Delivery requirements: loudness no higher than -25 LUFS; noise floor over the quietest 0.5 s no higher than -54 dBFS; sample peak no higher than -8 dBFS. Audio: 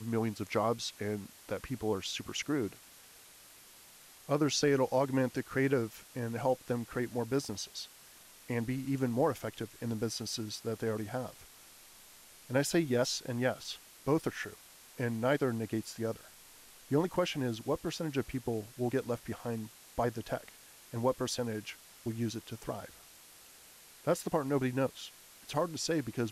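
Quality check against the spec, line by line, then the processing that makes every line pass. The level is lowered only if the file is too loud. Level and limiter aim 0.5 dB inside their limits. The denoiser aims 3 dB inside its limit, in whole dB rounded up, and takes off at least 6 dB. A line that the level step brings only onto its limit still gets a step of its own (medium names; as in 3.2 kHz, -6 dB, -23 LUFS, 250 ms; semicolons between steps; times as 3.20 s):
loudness -34.5 LUFS: pass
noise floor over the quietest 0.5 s -56 dBFS: pass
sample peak -18.0 dBFS: pass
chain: none needed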